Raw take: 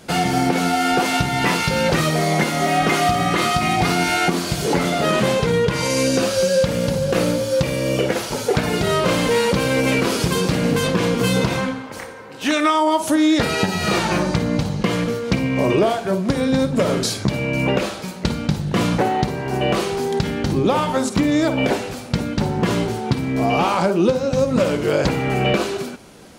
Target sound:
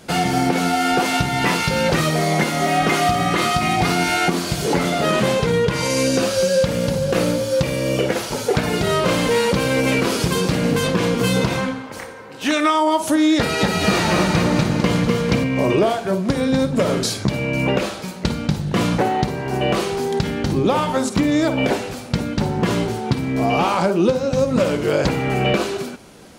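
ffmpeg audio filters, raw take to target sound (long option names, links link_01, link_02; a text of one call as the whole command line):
ffmpeg -i in.wav -filter_complex "[0:a]asettb=1/sr,asplit=3[link_01][link_02][link_03];[link_01]atrim=end=13.364[link_04];[link_02]atrim=start=13.36:end=15.44,asetpts=PTS-STARTPTS,afade=type=in:duration=0.004:curve=qsin,afade=type=out:start_time=2.076:duration=0.004:curve=qsin,aecho=1:1:250|450|610|738|840.4:0.631|0.398|0.251|0.158|0.1,atrim=end_sample=91728[link_05];[link_03]atrim=start=15.436[link_06];[link_04][link_05]acrossfade=duration=0.004:curve1=hsin:curve2=qsin[link_07];[link_07][link_06]acrossfade=duration=0.004:curve1=qsin:curve2=hsin" out.wav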